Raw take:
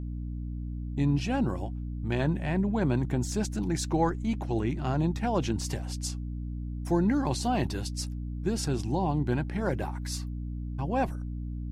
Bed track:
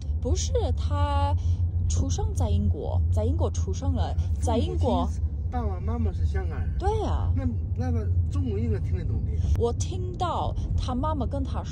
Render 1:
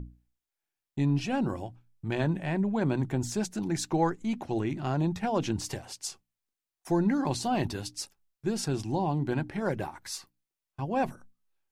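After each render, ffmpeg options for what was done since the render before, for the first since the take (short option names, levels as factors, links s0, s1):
-af "bandreject=f=60:t=h:w=6,bandreject=f=120:t=h:w=6,bandreject=f=180:t=h:w=6,bandreject=f=240:t=h:w=6,bandreject=f=300:t=h:w=6"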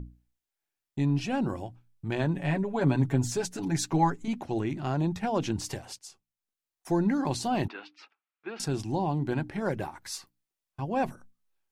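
-filter_complex "[0:a]asettb=1/sr,asplit=3[s0][s1][s2];[s0]atrim=end=2.364[s3];[s1]atrim=start=2.36:end=4.28,asetpts=PTS-STARTPTS,afade=t=in:d=0.004:c=qsin,afade=t=out:st=1.916:d=0.004:c=qsin,aecho=1:1:7.1:0.82,atrim=end_sample=84672[s4];[s2]atrim=start=4.276[s5];[s3][s4]acrossfade=d=0.004:c1=hsin:c2=qsin[s6];[s6][s5]acrossfade=d=0.004:c1=qsin:c2=hsin,asettb=1/sr,asplit=3[s7][s8][s9];[s7]atrim=end=7.684[s10];[s8]atrim=start=7.68:end=8.6,asetpts=PTS-STARTPTS,afade=t=in:d=0.004:c=qsin,afade=t=out:st=0.916:d=0.004:c=qsin,highpass=f=340:w=0.5412,highpass=f=340:w=1.3066,equalizer=f=390:t=q:w=4:g=-7,equalizer=f=560:t=q:w=4:g=-8,equalizer=f=1300:t=q:w=4:g=8,equalizer=f=2400:t=q:w=4:g=6,lowpass=f=3100:w=0.5412,lowpass=f=3100:w=1.3066[s11];[s9]atrim=start=8.596[s12];[s10][s11]acrossfade=d=0.004:c1=hsin:c2=qsin[s13];[s13][s12]acrossfade=d=0.004:c1=qsin:c2=hsin,asplit=2[s14][s15];[s14]atrim=end=5.99,asetpts=PTS-STARTPTS,afade=t=out:st=5.986:d=0.004:c=hsin:silence=0.237137[s16];[s15]atrim=start=5.99,asetpts=PTS-STARTPTS,afade=t=in:d=0.91:silence=0.237137[s17];[s16][s17]concat=n=2:v=0:a=1"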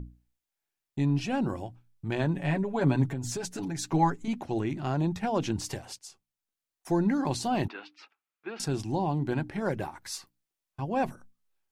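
-filter_complex "[0:a]asettb=1/sr,asplit=3[s0][s1][s2];[s0]atrim=end=3.114[s3];[s1]atrim=start=3.11:end=3.87,asetpts=PTS-STARTPTS,afade=t=in:d=0.004:c=qsin,afade=t=out:st=0.756:d=0.004:c=qsin,acompressor=threshold=0.0355:ratio=12:attack=3.2:release=140:knee=1:detection=peak[s4];[s2]atrim=start=3.866[s5];[s3][s4]acrossfade=d=0.004:c1=hsin:c2=qsin[s6];[s6][s5]acrossfade=d=0.004:c1=qsin:c2=hsin"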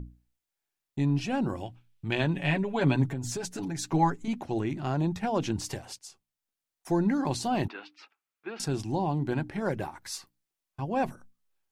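-filter_complex "[0:a]asettb=1/sr,asplit=3[s0][s1][s2];[s0]atrim=end=1.604[s3];[s1]atrim=start=1.6:end=2.95,asetpts=PTS-STARTPTS,afade=t=in:d=0.004:c=qsin,afade=t=out:st=1.346:d=0.004:c=qsin,equalizer=f=2900:t=o:w=1.1:g=9.5[s4];[s2]atrim=start=2.946[s5];[s3][s4]acrossfade=d=0.004:c1=hsin:c2=qsin[s6];[s6][s5]acrossfade=d=0.004:c1=qsin:c2=hsin"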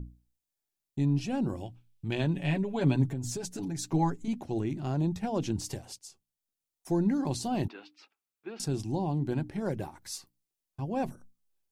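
-af "equalizer=f=1500:w=0.51:g=-8.5"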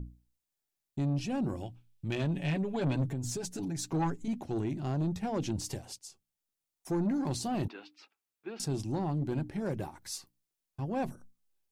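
-af "asoftclip=type=tanh:threshold=0.0562"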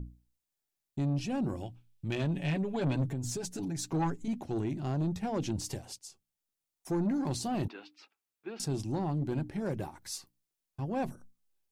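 -af anull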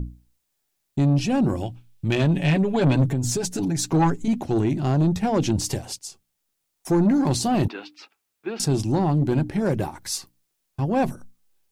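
-af "volume=3.76"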